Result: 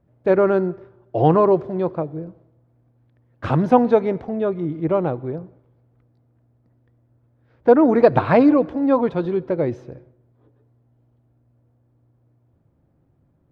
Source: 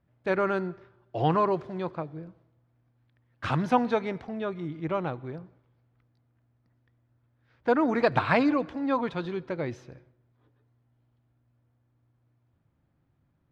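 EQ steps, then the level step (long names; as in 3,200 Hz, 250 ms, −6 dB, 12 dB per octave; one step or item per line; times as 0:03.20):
low-shelf EQ 220 Hz +11.5 dB
parametric band 490 Hz +13 dB 2.3 octaves
−3.0 dB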